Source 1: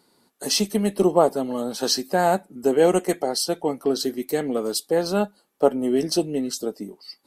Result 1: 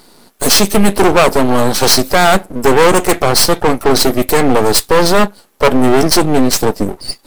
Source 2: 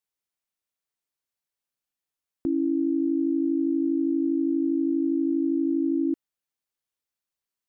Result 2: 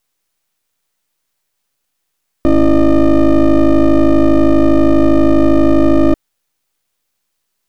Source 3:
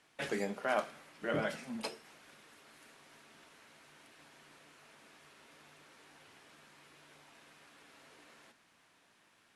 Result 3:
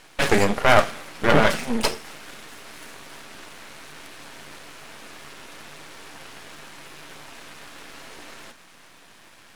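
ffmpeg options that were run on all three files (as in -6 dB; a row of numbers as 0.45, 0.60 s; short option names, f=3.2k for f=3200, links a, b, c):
-af "aeval=exprs='max(val(0),0)':c=same,acontrast=67,apsyclip=16.5dB,volume=-1.5dB"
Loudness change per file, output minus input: +11.5, +14.0, +17.0 LU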